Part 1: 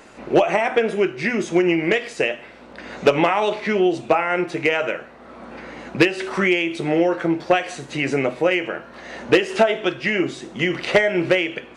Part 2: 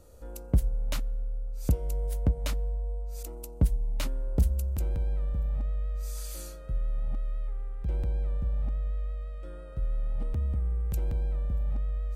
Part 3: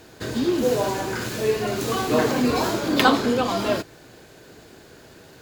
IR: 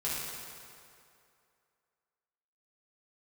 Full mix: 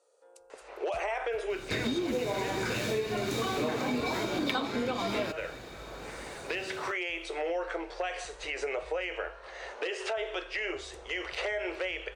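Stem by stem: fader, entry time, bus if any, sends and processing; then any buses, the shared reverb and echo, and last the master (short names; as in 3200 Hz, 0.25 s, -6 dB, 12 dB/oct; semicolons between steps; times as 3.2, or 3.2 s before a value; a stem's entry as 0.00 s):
-6.0 dB, 0.50 s, bus A, no send, no echo send, dry
-8.0 dB, 0.00 s, bus A, no send, echo send -19.5 dB, dry
0.0 dB, 1.50 s, no bus, no send, no echo send, high shelf 11000 Hz -9 dB; small resonant body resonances 2300/3700 Hz, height 15 dB
bus A: 0.0 dB, Chebyshev band-pass 420–9400 Hz, order 4; limiter -22.5 dBFS, peak gain reduction 14 dB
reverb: off
echo: feedback echo 0.402 s, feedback 55%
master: compressor 8:1, threshold -28 dBFS, peak gain reduction 16.5 dB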